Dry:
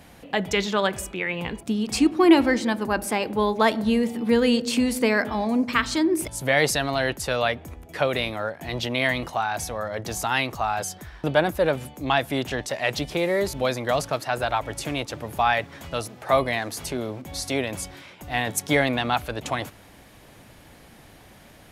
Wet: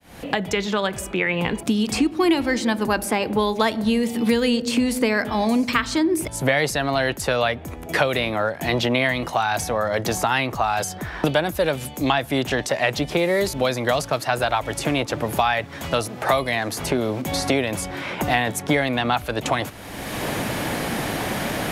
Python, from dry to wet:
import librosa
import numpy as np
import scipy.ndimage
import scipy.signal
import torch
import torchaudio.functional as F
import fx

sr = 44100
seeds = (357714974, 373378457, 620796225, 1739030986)

y = fx.fade_in_head(x, sr, length_s=2.56)
y = fx.band_squash(y, sr, depth_pct=100)
y = y * librosa.db_to_amplitude(2.0)